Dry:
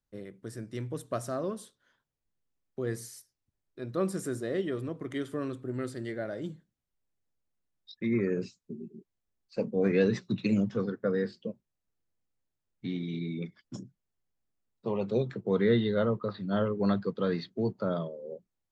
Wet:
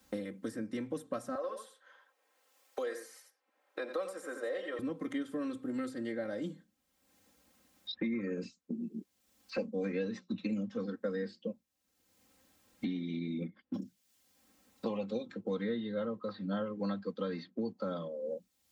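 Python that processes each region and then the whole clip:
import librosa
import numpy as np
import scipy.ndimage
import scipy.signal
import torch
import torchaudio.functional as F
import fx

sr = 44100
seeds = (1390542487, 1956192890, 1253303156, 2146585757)

y = fx.chain(x, sr, fx.highpass(hz=470.0, slope=24),
    fx.echo_single(ms=85, db=-8.5), at=(1.35, 4.79))
y = fx.chain(y, sr, fx.gaussian_blur(sigma=2.8),
    fx.tilt_shelf(db=3.5, hz=710.0),
    fx.quant_float(bits=8), at=(13.41, 13.82))
y = scipy.signal.sosfilt(scipy.signal.butter(2, 92.0, 'highpass', fs=sr, output='sos'), y)
y = y + 0.94 * np.pad(y, (int(3.8 * sr / 1000.0), 0))[:len(y)]
y = fx.band_squash(y, sr, depth_pct=100)
y = F.gain(torch.from_numpy(y), -8.5).numpy()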